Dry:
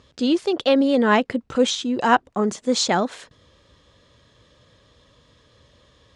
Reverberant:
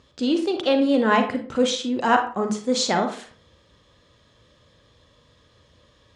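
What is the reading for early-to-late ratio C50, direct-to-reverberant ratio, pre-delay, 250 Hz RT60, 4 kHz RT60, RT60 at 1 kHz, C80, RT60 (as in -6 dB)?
8.0 dB, 5.0 dB, 35 ms, 0.45 s, 0.25 s, 0.40 s, 13.5 dB, 0.40 s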